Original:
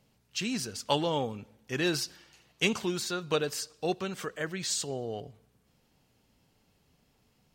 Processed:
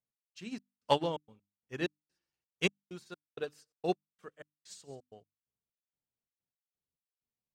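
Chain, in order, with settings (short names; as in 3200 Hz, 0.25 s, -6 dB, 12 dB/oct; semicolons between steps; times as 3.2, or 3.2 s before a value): in parallel at -6.5 dB: hard clip -19.5 dBFS, distortion -19 dB; on the sum: high shelf 2400 Hz -7 dB; on a send: thin delay 0.134 s, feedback 32%, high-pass 1600 Hz, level -17 dB; on the sum: step gate "x..xx..xxx." 129 bpm -60 dB; bell 9500 Hz +3 dB 0.33 oct; notches 50/100/150/200/250/300 Hz; upward expander 2.5:1, over -44 dBFS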